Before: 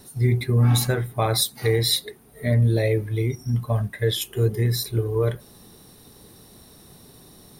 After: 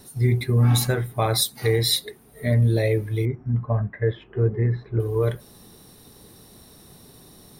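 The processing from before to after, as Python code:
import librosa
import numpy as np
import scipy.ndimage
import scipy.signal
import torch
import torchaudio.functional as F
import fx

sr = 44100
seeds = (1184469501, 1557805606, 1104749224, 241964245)

y = fx.lowpass(x, sr, hz=1900.0, slope=24, at=(3.25, 5.0))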